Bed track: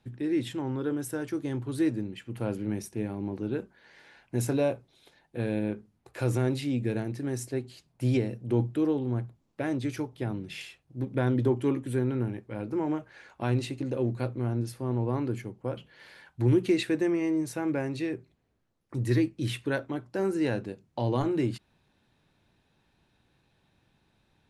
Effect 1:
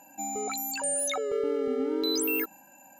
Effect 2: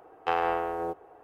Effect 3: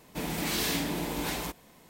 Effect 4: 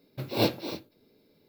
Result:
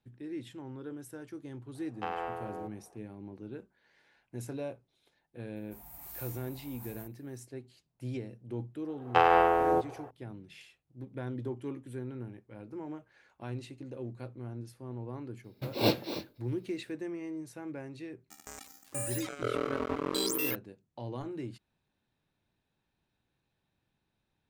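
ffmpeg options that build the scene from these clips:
-filter_complex "[2:a]asplit=2[a][b];[0:a]volume=-12dB[c];[3:a]firequalizer=gain_entry='entry(110,0);entry(180,-19);entry(270,-15);entry(380,-25);entry(720,-3);entry(1100,-7);entry(1700,-13);entry(3400,-19);entry(8500,-3);entry(14000,10)':delay=0.05:min_phase=1[d];[b]dynaudnorm=f=100:g=3:m=9.5dB[e];[1:a]acrusher=bits=3:mix=0:aa=0.5[f];[a]atrim=end=1.23,asetpts=PTS-STARTPTS,volume=-9.5dB,afade=t=in:d=0.004:c=hsin,afade=t=out:st=1.226:d=0.004:c=hsin,adelay=1750[g];[d]atrim=end=1.89,asetpts=PTS-STARTPTS,volume=-14.5dB,afade=t=in:d=0.004:c=hsin,afade=t=out:st=1.886:d=0.004:c=hsin,adelay=5560[h];[e]atrim=end=1.23,asetpts=PTS-STARTPTS,volume=-3.5dB,afade=t=in:d=0.004:c=hsin,afade=t=out:st=1.226:d=0.004:c=hsin,adelay=8880[i];[4:a]atrim=end=1.48,asetpts=PTS-STARTPTS,volume=-1.5dB,afade=t=in:d=0.004:c=hsin,afade=t=out:st=1.476:d=0.004:c=hsin,adelay=15440[j];[f]atrim=end=2.99,asetpts=PTS-STARTPTS,volume=-3.5dB,afade=t=in:d=0.004:c=hsin,afade=t=out:st=2.986:d=0.004:c=hsin,adelay=18110[k];[c][g][h][i][j][k]amix=inputs=6:normalize=0"

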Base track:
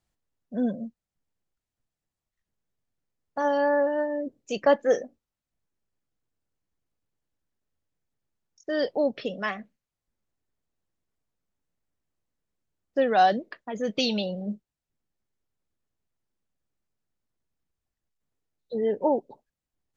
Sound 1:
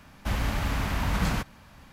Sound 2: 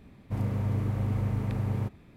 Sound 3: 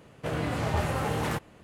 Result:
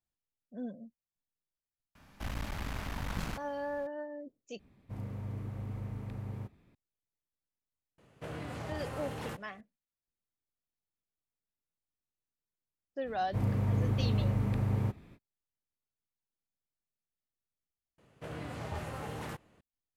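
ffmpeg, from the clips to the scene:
-filter_complex "[2:a]asplit=2[a][b];[3:a]asplit=2[c][d];[0:a]volume=-14dB[e];[1:a]aeval=exprs='clip(val(0),-1,0.02)':c=same[f];[c]acompressor=threshold=-38dB:ratio=2.5:attack=96:release=20:knee=1:detection=peak[g];[e]asplit=3[h][i][j];[h]atrim=end=4.594[k];[a]atrim=end=2.16,asetpts=PTS-STARTPTS,volume=-11dB[l];[i]atrim=start=6.746:end=17.984[m];[d]atrim=end=1.63,asetpts=PTS-STARTPTS,volume=-11.5dB[n];[j]atrim=start=19.606[o];[f]atrim=end=1.92,asetpts=PTS-STARTPTS,volume=-8dB,afade=t=in:d=0.004:c=hsin,afade=t=out:st=1.916:d=0.004:c=hsin,adelay=1950[p];[g]atrim=end=1.63,asetpts=PTS-STARTPTS,volume=-10dB,afade=t=in:d=0.004:c=hsin,afade=t=out:st=1.626:d=0.004:c=hsin,adelay=7980[q];[b]atrim=end=2.16,asetpts=PTS-STARTPTS,volume=-1dB,afade=t=in:d=0.05,afade=t=out:st=2.11:d=0.05,adelay=13030[r];[k][l]acrossfade=d=0.004:c1=hsin:c2=hsin[s];[s][m]acrossfade=d=0.004:c1=hsin:c2=hsin[t];[t][n]acrossfade=d=0.004:c1=hsin:c2=hsin[u];[u][o]acrossfade=d=0.004:c1=hsin:c2=hsin[v];[v][p][q][r]amix=inputs=4:normalize=0"

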